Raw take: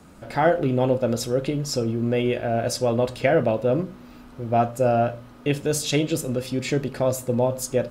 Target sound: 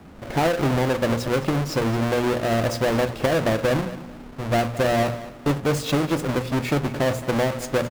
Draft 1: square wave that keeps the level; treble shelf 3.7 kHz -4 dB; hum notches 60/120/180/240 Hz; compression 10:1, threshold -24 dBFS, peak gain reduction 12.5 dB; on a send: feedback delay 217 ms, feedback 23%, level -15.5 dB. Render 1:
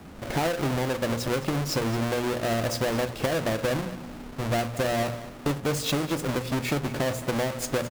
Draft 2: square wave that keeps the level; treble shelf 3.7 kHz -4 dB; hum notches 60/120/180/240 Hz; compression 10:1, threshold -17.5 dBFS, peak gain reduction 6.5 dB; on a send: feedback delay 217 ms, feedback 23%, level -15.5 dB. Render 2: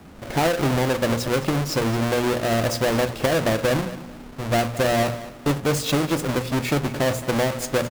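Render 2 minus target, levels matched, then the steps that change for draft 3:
8 kHz band +4.5 dB
change: treble shelf 3.7 kHz -10 dB

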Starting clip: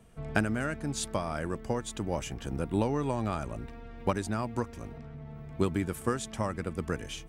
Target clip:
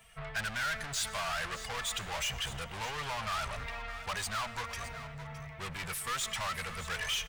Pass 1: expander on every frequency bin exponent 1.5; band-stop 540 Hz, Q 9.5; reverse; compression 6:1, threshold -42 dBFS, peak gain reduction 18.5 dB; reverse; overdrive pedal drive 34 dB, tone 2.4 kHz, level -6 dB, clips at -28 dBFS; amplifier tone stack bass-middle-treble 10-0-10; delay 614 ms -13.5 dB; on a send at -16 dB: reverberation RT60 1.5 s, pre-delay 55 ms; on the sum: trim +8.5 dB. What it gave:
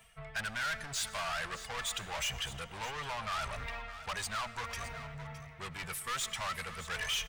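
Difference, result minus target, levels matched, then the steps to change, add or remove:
compression: peak gain reduction +8 dB
change: compression 6:1, threshold -32.5 dBFS, peak gain reduction 10.5 dB

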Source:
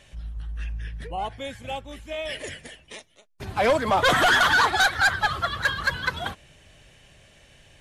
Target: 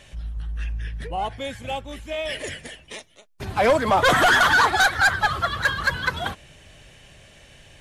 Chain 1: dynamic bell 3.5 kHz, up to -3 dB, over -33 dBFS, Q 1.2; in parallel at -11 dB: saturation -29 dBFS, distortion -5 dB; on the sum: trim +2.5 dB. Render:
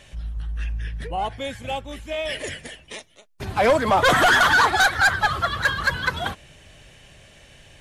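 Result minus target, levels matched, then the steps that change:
saturation: distortion -4 dB
change: saturation -39.5 dBFS, distortion -1 dB

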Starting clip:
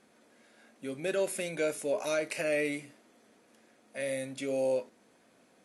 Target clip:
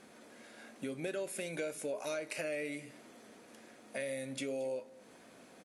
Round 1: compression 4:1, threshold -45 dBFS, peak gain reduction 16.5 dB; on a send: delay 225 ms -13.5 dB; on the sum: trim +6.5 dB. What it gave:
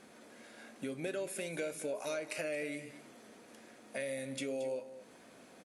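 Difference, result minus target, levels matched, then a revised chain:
echo-to-direct +7 dB
compression 4:1, threshold -45 dBFS, peak gain reduction 16.5 dB; on a send: delay 225 ms -20.5 dB; on the sum: trim +6.5 dB

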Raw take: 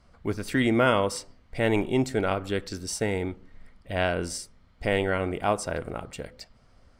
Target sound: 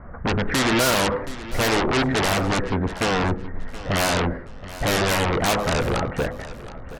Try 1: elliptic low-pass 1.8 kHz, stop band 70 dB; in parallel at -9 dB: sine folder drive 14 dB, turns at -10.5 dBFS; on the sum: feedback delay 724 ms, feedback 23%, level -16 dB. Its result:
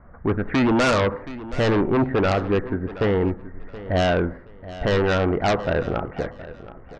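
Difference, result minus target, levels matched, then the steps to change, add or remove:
sine folder: distortion -15 dB
change: sine folder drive 24 dB, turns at -10.5 dBFS

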